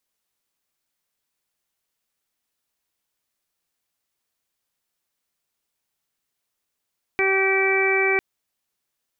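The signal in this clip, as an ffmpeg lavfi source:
-f lavfi -i "aevalsrc='0.0841*sin(2*PI*386*t)+0.0376*sin(2*PI*772*t)+0.0237*sin(2*PI*1158*t)+0.0355*sin(2*PI*1544*t)+0.0473*sin(2*PI*1930*t)+0.0944*sin(2*PI*2316*t)':d=1:s=44100"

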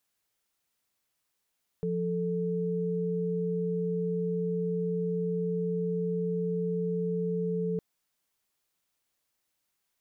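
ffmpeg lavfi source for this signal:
-f lavfi -i "aevalsrc='0.0316*(sin(2*PI*174.61*t)+sin(2*PI*440*t))':d=5.96:s=44100"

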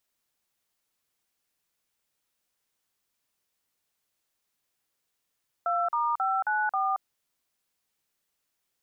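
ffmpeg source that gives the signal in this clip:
-f lavfi -i "aevalsrc='0.0473*clip(min(mod(t,0.269),0.226-mod(t,0.269))/0.002,0,1)*(eq(floor(t/0.269),0)*(sin(2*PI*697*mod(t,0.269))+sin(2*PI*1336*mod(t,0.269)))+eq(floor(t/0.269),1)*(sin(2*PI*941*mod(t,0.269))+sin(2*PI*1209*mod(t,0.269)))+eq(floor(t/0.269),2)*(sin(2*PI*770*mod(t,0.269))+sin(2*PI*1336*mod(t,0.269)))+eq(floor(t/0.269),3)*(sin(2*PI*852*mod(t,0.269))+sin(2*PI*1477*mod(t,0.269)))+eq(floor(t/0.269),4)*(sin(2*PI*770*mod(t,0.269))+sin(2*PI*1209*mod(t,0.269))))':d=1.345:s=44100"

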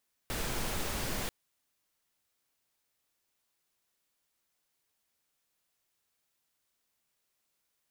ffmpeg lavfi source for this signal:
-f lavfi -i "anoisesrc=c=pink:a=0.0966:d=0.99:r=44100:seed=1"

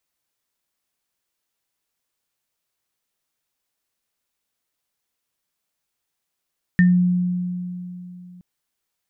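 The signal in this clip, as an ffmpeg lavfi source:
-f lavfi -i "aevalsrc='0.316*pow(10,-3*t/3.16)*sin(2*PI*179*t)+0.158*pow(10,-3*t/0.21)*sin(2*PI*1810*t)':d=1.62:s=44100"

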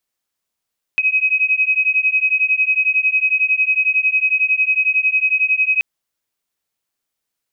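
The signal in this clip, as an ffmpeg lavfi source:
-f lavfi -i "aevalsrc='0.15*(sin(2*PI*2530*t)+sin(2*PI*2541*t))':d=4.83:s=44100"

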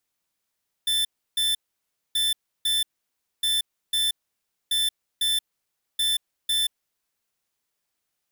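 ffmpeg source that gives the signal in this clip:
-f lavfi -i "aevalsrc='0.0708*(2*lt(mod(3530*t,1),0.5)-1)*clip(min(mod(mod(t,1.28),0.5),0.18-mod(mod(t,1.28),0.5))/0.005,0,1)*lt(mod(t,1.28),1)':d=6.4:s=44100"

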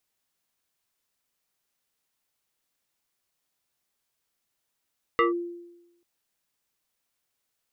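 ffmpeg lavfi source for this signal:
-f lavfi -i "aevalsrc='0.158*pow(10,-3*t/0.97)*sin(2*PI*346*t+2.2*clip(1-t/0.14,0,1)*sin(2*PI*2.35*346*t))':d=0.84:s=44100"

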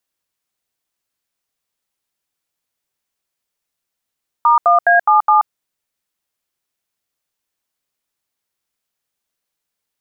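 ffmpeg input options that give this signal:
-f lavfi -i "aevalsrc='0.299*clip(min(mod(t,0.208),0.13-mod(t,0.208))/0.002,0,1)*(eq(floor(t/0.208),0)*(sin(2*PI*941*mod(t,0.208))+sin(2*PI*1209*mod(t,0.208)))+eq(floor(t/0.208),1)*(sin(2*PI*697*mod(t,0.208))+sin(2*PI*1209*mod(t,0.208)))+eq(floor(t/0.208),2)*(sin(2*PI*697*mod(t,0.208))+sin(2*PI*1633*mod(t,0.208)))+eq(floor(t/0.208),3)*(sin(2*PI*852*mod(t,0.208))+sin(2*PI*1209*mod(t,0.208)))+eq(floor(t/0.208),4)*(sin(2*PI*852*mod(t,0.208))+sin(2*PI*1209*mod(t,0.208))))':d=1.04:s=44100"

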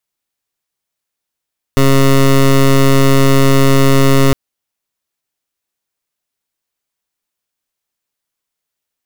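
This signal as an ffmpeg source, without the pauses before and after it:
-f lavfi -i "aevalsrc='0.398*(2*lt(mod(136*t,1),0.17)-1)':d=2.56:s=44100"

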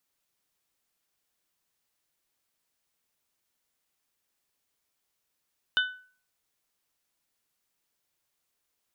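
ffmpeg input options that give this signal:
-f lavfi -i "aevalsrc='0.1*pow(10,-3*t/0.44)*sin(2*PI*1500*t)+0.0708*pow(10,-3*t/0.271)*sin(2*PI*3000*t)+0.0501*pow(10,-3*t/0.238)*sin(2*PI*3600*t)':d=0.89:s=44100"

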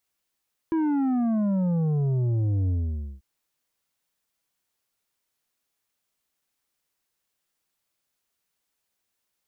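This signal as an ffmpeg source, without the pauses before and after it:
-f lavfi -i "aevalsrc='0.0794*clip((2.49-t)/0.52,0,1)*tanh(2.37*sin(2*PI*330*2.49/log(65/330)*(exp(log(65/330)*t/2.49)-1)))/tanh(2.37)':d=2.49:s=44100"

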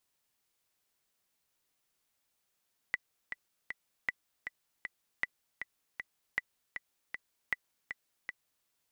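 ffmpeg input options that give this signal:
-f lavfi -i "aevalsrc='pow(10,(-17-8*gte(mod(t,3*60/157),60/157))/20)*sin(2*PI*1980*mod(t,60/157))*exp(-6.91*mod(t,60/157)/0.03)':d=5.73:s=44100"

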